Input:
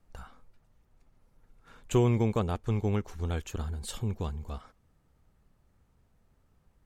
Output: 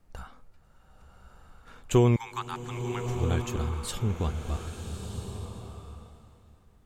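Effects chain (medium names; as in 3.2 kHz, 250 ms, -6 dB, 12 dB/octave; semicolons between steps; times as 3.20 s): 2.16–3.02 s: steep high-pass 830 Hz 96 dB/octave; swelling reverb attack 1290 ms, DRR 6 dB; trim +3.5 dB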